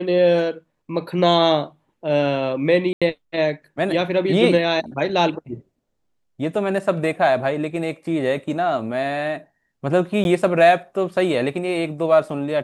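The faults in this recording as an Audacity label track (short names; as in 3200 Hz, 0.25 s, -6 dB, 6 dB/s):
2.930000	3.020000	gap 86 ms
10.240000	10.250000	gap 11 ms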